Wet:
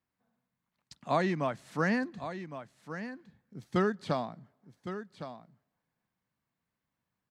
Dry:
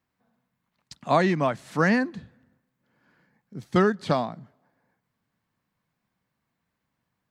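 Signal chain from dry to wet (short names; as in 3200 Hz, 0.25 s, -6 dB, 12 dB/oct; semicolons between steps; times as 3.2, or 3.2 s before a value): echo 1.111 s -11 dB; gain -7.5 dB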